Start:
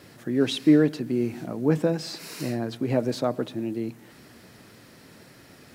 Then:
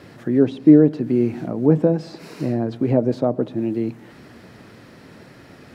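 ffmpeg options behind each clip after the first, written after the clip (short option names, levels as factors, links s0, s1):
-filter_complex "[0:a]lowpass=f=2300:p=1,acrossover=split=880[s0][s1];[s1]acompressor=threshold=0.00355:ratio=10[s2];[s0][s2]amix=inputs=2:normalize=0,volume=2.24"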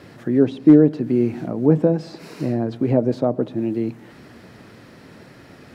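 -af "asoftclip=type=hard:threshold=0.75"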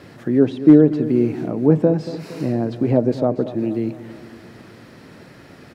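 -af "aecho=1:1:232|464|696|928|1160:0.188|0.0998|0.0529|0.028|0.0149,volume=1.12"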